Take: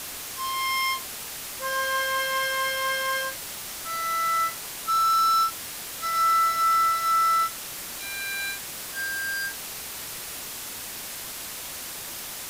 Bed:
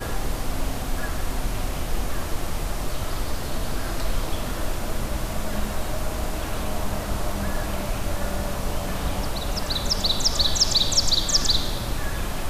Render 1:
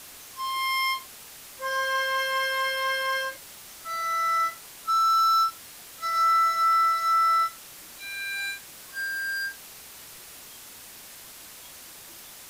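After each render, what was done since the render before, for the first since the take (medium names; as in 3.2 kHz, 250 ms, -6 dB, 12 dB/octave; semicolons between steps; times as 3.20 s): noise print and reduce 9 dB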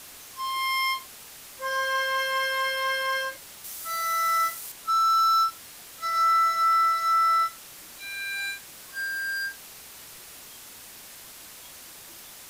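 3.64–4.72 s: treble shelf 6.4 kHz +11 dB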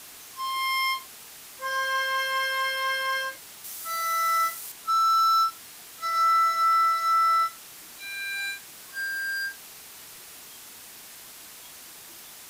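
bass shelf 84 Hz -8 dB; band-stop 550 Hz, Q 12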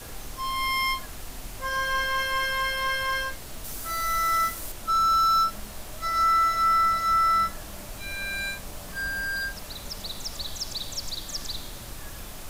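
add bed -13.5 dB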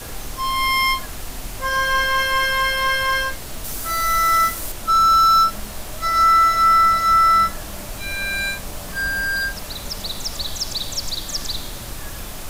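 trim +7.5 dB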